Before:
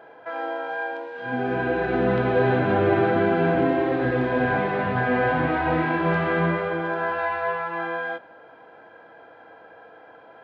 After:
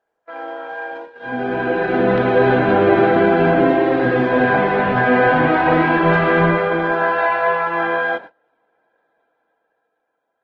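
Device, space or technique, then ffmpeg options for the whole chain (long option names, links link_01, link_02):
video call: -af "highpass=150,dynaudnorm=framelen=280:gausssize=11:maxgain=11dB,agate=range=-27dB:threshold=-32dB:ratio=16:detection=peak" -ar 48000 -c:a libopus -b:a 16k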